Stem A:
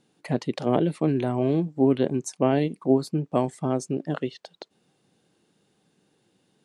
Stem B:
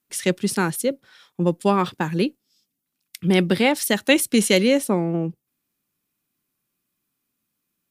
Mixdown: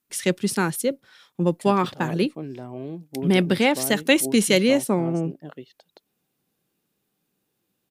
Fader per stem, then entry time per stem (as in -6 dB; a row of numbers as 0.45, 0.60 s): -11.0, -1.0 dB; 1.35, 0.00 s